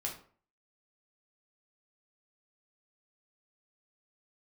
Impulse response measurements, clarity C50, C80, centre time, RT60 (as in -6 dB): 8.0 dB, 13.0 dB, 23 ms, 0.45 s